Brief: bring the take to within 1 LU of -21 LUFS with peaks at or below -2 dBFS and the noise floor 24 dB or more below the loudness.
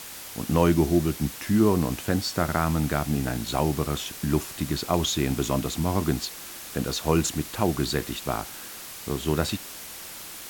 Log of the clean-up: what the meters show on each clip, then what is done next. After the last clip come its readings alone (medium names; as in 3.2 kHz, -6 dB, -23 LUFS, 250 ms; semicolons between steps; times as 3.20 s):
noise floor -40 dBFS; noise floor target -50 dBFS; loudness -26.0 LUFS; peak level -6.0 dBFS; loudness target -21.0 LUFS
-> noise reduction 10 dB, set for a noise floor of -40 dBFS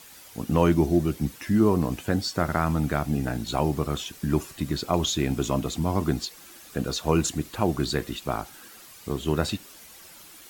noise floor -48 dBFS; noise floor target -51 dBFS
-> noise reduction 6 dB, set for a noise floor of -48 dBFS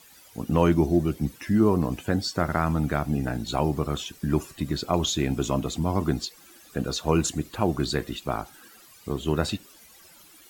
noise floor -52 dBFS; loudness -26.5 LUFS; peak level -6.0 dBFS; loudness target -21.0 LUFS
-> trim +5.5 dB; peak limiter -2 dBFS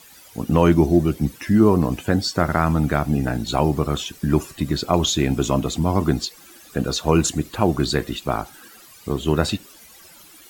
loudness -21.0 LUFS; peak level -2.0 dBFS; noise floor -47 dBFS